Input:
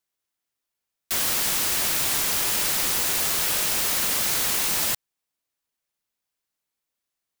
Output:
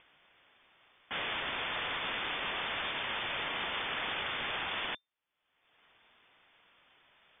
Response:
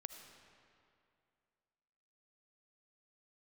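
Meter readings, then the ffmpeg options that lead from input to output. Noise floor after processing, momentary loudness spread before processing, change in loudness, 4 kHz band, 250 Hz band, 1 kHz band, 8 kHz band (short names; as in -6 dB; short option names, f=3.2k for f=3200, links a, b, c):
-83 dBFS, 2 LU, -13.5 dB, -8.5 dB, -9.5 dB, -4.0 dB, under -40 dB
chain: -af "acompressor=mode=upward:threshold=-35dB:ratio=2.5,alimiter=limit=-15dB:level=0:latency=1,asoftclip=type=tanh:threshold=-21.5dB,lowpass=f=3.1k:t=q:w=0.5098,lowpass=f=3.1k:t=q:w=0.6013,lowpass=f=3.1k:t=q:w=0.9,lowpass=f=3.1k:t=q:w=2.563,afreqshift=-3600"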